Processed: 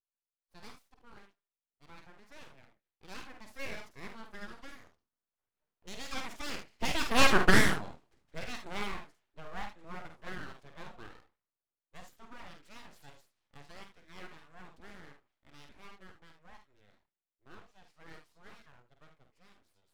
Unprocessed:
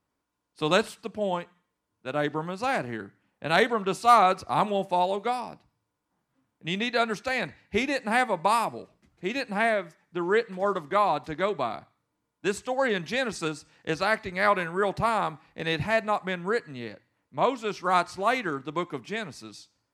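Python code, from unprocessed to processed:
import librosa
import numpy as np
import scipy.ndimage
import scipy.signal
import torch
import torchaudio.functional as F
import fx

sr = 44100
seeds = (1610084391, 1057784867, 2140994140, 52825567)

y = fx.doppler_pass(x, sr, speed_mps=41, closest_m=8.5, pass_at_s=7.37)
y = fx.room_early_taps(y, sr, ms=(49, 74), db=(-6.0, -11.0))
y = np.abs(y)
y = F.gain(torch.from_numpy(y), 5.0).numpy()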